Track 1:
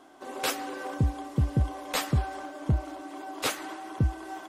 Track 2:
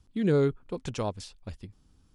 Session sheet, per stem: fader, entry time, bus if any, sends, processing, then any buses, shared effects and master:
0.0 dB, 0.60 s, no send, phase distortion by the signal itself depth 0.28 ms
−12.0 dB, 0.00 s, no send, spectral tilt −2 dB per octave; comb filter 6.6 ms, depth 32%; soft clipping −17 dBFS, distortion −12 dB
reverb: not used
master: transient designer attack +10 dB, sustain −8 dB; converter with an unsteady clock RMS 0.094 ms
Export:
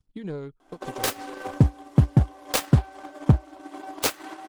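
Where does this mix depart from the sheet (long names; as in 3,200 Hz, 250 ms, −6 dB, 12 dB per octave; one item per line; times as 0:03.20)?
stem 2: missing spectral tilt −2 dB per octave
master: missing converter with an unsteady clock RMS 0.094 ms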